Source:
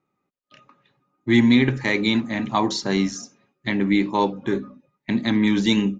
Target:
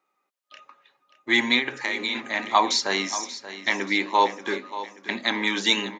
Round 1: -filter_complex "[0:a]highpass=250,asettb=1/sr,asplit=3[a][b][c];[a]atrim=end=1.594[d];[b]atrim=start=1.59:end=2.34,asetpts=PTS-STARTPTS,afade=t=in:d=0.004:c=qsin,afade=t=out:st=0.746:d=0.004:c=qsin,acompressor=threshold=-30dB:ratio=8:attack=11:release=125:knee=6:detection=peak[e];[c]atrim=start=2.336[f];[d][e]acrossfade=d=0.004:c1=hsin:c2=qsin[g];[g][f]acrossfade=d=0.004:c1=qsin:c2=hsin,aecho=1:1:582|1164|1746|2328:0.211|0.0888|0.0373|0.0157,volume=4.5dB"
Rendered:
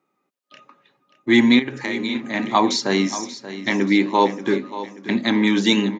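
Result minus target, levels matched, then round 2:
250 Hz band +8.5 dB
-filter_complex "[0:a]highpass=650,asettb=1/sr,asplit=3[a][b][c];[a]atrim=end=1.594[d];[b]atrim=start=1.59:end=2.34,asetpts=PTS-STARTPTS,afade=t=in:d=0.004:c=qsin,afade=t=out:st=0.746:d=0.004:c=qsin,acompressor=threshold=-30dB:ratio=8:attack=11:release=125:knee=6:detection=peak[e];[c]atrim=start=2.336[f];[d][e]acrossfade=d=0.004:c1=hsin:c2=qsin[g];[g][f]acrossfade=d=0.004:c1=qsin:c2=hsin,aecho=1:1:582|1164|1746|2328:0.211|0.0888|0.0373|0.0157,volume=4.5dB"

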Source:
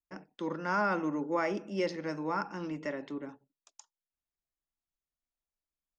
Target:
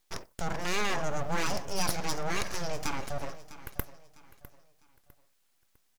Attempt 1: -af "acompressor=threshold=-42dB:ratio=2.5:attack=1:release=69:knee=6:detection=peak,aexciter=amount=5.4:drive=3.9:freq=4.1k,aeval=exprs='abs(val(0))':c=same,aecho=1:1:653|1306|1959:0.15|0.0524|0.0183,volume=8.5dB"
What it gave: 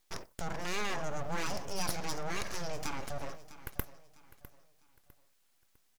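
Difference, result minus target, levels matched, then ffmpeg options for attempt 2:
compressor: peak gain reduction +5 dB
-af "acompressor=threshold=-33.5dB:ratio=2.5:attack=1:release=69:knee=6:detection=peak,aexciter=amount=5.4:drive=3.9:freq=4.1k,aeval=exprs='abs(val(0))':c=same,aecho=1:1:653|1306|1959:0.15|0.0524|0.0183,volume=8.5dB"

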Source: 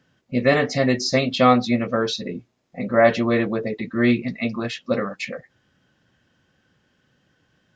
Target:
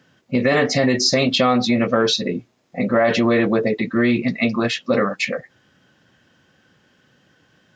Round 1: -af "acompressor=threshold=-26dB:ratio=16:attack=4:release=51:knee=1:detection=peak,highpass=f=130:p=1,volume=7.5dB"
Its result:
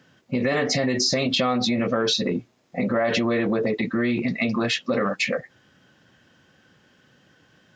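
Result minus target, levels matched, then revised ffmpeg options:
compressor: peak gain reduction +6 dB
-af "acompressor=threshold=-19.5dB:ratio=16:attack=4:release=51:knee=1:detection=peak,highpass=f=130:p=1,volume=7.5dB"

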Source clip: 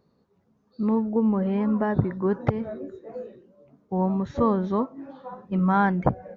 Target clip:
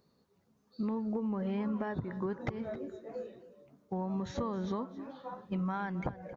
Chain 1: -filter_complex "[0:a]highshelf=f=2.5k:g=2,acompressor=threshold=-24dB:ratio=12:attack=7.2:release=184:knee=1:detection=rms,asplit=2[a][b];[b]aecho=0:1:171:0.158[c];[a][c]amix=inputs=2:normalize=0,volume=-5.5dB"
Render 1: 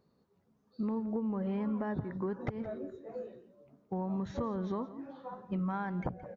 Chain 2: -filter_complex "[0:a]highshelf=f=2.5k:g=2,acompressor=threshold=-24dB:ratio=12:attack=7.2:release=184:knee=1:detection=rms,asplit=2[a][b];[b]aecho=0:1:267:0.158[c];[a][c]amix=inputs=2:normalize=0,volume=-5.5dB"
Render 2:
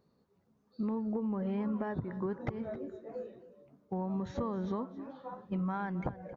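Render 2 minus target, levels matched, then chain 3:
4000 Hz band -6.0 dB
-filter_complex "[0:a]highshelf=f=2.5k:g=11,acompressor=threshold=-24dB:ratio=12:attack=7.2:release=184:knee=1:detection=rms,asplit=2[a][b];[b]aecho=0:1:267:0.158[c];[a][c]amix=inputs=2:normalize=0,volume=-5.5dB"

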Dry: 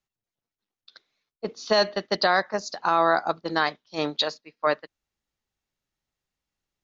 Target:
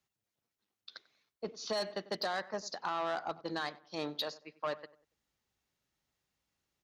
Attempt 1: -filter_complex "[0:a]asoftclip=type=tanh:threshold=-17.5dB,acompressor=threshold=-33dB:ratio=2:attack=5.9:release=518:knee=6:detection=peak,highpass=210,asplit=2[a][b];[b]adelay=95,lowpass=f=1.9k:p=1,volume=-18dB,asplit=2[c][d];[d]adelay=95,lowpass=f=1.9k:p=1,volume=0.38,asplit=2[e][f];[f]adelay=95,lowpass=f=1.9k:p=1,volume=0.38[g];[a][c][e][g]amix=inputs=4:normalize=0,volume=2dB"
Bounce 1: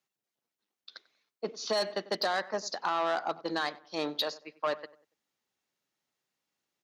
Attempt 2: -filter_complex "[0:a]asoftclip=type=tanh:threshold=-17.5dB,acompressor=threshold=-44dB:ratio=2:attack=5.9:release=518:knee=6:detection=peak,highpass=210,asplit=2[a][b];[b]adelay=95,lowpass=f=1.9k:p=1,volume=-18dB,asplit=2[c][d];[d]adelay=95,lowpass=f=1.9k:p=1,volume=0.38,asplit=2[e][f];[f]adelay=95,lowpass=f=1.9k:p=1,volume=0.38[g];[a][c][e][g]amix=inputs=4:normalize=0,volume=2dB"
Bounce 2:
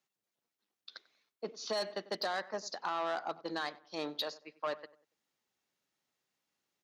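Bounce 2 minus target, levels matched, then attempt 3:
125 Hz band -5.0 dB
-filter_complex "[0:a]asoftclip=type=tanh:threshold=-17.5dB,acompressor=threshold=-44dB:ratio=2:attack=5.9:release=518:knee=6:detection=peak,highpass=54,asplit=2[a][b];[b]adelay=95,lowpass=f=1.9k:p=1,volume=-18dB,asplit=2[c][d];[d]adelay=95,lowpass=f=1.9k:p=1,volume=0.38,asplit=2[e][f];[f]adelay=95,lowpass=f=1.9k:p=1,volume=0.38[g];[a][c][e][g]amix=inputs=4:normalize=0,volume=2dB"

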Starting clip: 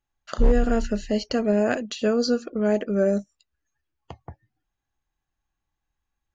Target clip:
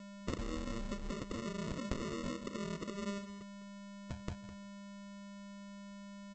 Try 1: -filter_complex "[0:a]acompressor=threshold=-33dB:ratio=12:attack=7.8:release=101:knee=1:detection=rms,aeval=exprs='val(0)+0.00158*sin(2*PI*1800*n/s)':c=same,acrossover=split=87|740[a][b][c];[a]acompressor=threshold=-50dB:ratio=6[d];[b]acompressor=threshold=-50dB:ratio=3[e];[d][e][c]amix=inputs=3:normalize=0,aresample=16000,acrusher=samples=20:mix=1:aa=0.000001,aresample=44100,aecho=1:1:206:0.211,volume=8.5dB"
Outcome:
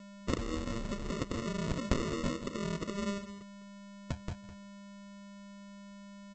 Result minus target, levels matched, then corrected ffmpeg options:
compressor: peak gain reduction -9 dB
-filter_complex "[0:a]acompressor=threshold=-43dB:ratio=12:attack=7.8:release=101:knee=1:detection=rms,aeval=exprs='val(0)+0.00158*sin(2*PI*1800*n/s)':c=same,acrossover=split=87|740[a][b][c];[a]acompressor=threshold=-50dB:ratio=6[d];[b]acompressor=threshold=-50dB:ratio=3[e];[d][e][c]amix=inputs=3:normalize=0,aresample=16000,acrusher=samples=20:mix=1:aa=0.000001,aresample=44100,aecho=1:1:206:0.211,volume=8.5dB"

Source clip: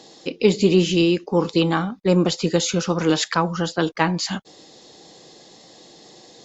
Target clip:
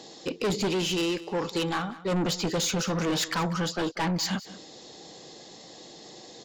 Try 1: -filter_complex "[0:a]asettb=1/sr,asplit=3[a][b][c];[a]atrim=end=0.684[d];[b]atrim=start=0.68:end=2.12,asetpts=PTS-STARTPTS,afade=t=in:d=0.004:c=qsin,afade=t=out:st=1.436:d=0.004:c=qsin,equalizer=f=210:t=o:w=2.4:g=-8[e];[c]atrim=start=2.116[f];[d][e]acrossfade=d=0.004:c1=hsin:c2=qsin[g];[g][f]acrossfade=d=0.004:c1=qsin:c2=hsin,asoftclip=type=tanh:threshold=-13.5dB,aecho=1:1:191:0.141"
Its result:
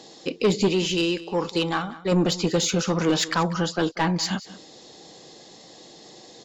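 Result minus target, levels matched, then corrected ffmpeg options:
soft clip: distortion -7 dB
-filter_complex "[0:a]asettb=1/sr,asplit=3[a][b][c];[a]atrim=end=0.684[d];[b]atrim=start=0.68:end=2.12,asetpts=PTS-STARTPTS,afade=t=in:d=0.004:c=qsin,afade=t=out:st=1.436:d=0.004:c=qsin,equalizer=f=210:t=o:w=2.4:g=-8[e];[c]atrim=start=2.116[f];[d][e]acrossfade=d=0.004:c1=hsin:c2=qsin[g];[g][f]acrossfade=d=0.004:c1=qsin:c2=hsin,asoftclip=type=tanh:threshold=-23.5dB,aecho=1:1:191:0.141"

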